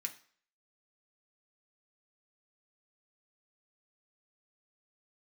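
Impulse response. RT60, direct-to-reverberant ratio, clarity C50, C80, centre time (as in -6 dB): 0.50 s, 2.0 dB, 14.0 dB, 18.0 dB, 9 ms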